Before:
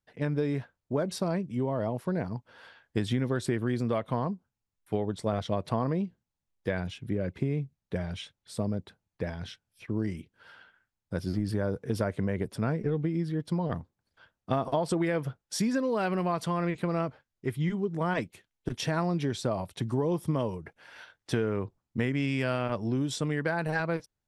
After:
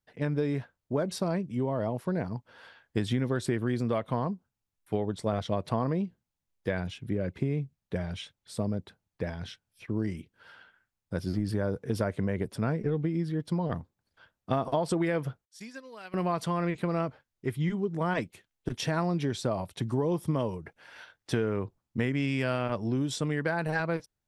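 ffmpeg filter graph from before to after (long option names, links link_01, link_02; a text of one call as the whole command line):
ffmpeg -i in.wav -filter_complex "[0:a]asettb=1/sr,asplit=3[link_01][link_02][link_03];[link_01]atrim=end=15.454[link_04];[link_02]atrim=start=15.45:end=16.14,asetpts=PTS-STARTPTS,afade=type=in:duration=0.004:curve=qsin,afade=type=out:start_time=0.686:duration=0.004:curve=qsin,agate=range=-33dB:threshold=-19dB:ratio=3:release=100:detection=peak,tiltshelf=frequency=1100:gain=-8[link_05];[link_03]atrim=start=16.136[link_06];[link_04][link_05]acrossfade=duration=0.004:curve1=hsin:curve2=qsin[link_07];[link_07][link_06]acrossfade=duration=0.004:curve1=qsin:curve2=hsin" out.wav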